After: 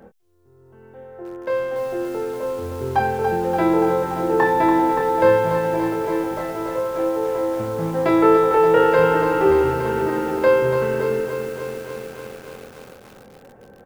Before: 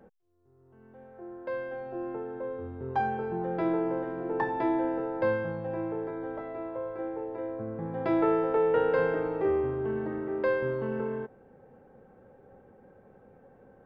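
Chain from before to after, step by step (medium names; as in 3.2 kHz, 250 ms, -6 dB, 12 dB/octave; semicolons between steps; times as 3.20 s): treble shelf 2.4 kHz +6 dB; doubling 25 ms -6 dB; bit-crushed delay 287 ms, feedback 80%, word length 8-bit, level -7 dB; trim +8.5 dB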